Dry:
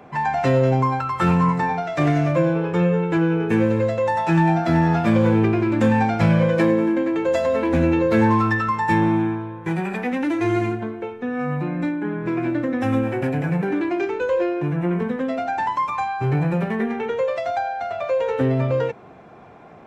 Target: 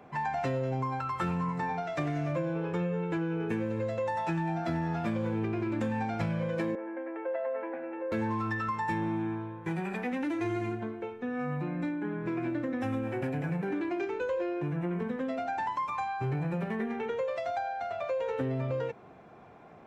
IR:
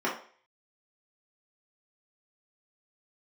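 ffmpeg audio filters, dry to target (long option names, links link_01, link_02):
-filter_complex "[0:a]acompressor=threshold=-20dB:ratio=6,asettb=1/sr,asplit=3[link_01][link_02][link_03];[link_01]atrim=end=6.754[link_04];[link_02]atrim=start=6.75:end=8.12,asetpts=PTS-STARTPTS,afade=type=in:duration=0.004:curve=qsin,afade=type=out:start_time=1.366:duration=0.004:curve=qsin,highpass=frequency=390:width=0.5412,highpass=frequency=390:width=1.3066,equalizer=frequency=420:width_type=q:width=4:gain=-5,equalizer=frequency=800:width_type=q:width=4:gain=3,equalizer=frequency=1100:width_type=q:width=4:gain=-6,lowpass=frequency=2000:width=0.5412,lowpass=frequency=2000:width=1.3066[link_05];[link_03]atrim=start=8.116[link_06];[link_04][link_05]acrossfade=duration=0.004:curve1=hsin:curve2=qsin[link_07];[link_07][link_06]acrossfade=duration=0.004:curve1=qsin:curve2=hsin,volume=-8dB"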